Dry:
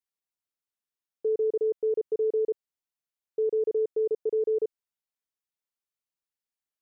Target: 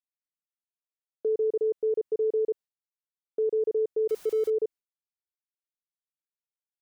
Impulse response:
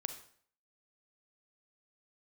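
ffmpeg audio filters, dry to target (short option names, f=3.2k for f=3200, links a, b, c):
-filter_complex "[0:a]asettb=1/sr,asplit=3[a][b][c];[a]atrim=end=4.094[d];[b]atrim=start=4.09:end=4.5,asetpts=PTS-STARTPTS,afade=t=in:d=0.004:c=qsin,afade=t=out:st=0.406:d=0.004:c=qsin,aeval=exprs='val(0)+0.5*0.00794*sgn(val(0))':c=same[e];[c]atrim=start=4.496[f];[d][e]acrossfade=d=0.004:c1=hsin:c2=qsin[g];[g][f]acrossfade=d=0.004:c1=qsin:c2=hsin,agate=range=-33dB:threshold=-41dB:ratio=3:detection=peak"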